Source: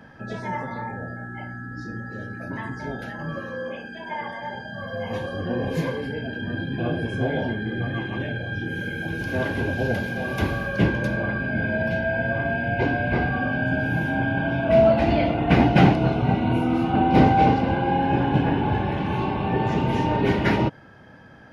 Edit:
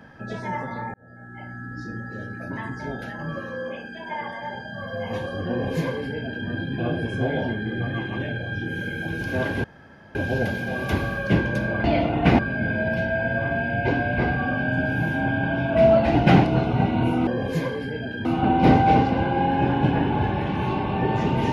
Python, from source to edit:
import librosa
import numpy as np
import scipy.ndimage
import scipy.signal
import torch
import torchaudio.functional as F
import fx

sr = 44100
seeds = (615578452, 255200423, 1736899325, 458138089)

y = fx.edit(x, sr, fx.fade_in_span(start_s=0.94, length_s=0.71),
    fx.duplicate(start_s=5.49, length_s=0.98, to_s=16.76),
    fx.insert_room_tone(at_s=9.64, length_s=0.51),
    fx.move(start_s=15.09, length_s=0.55, to_s=11.33), tone=tone)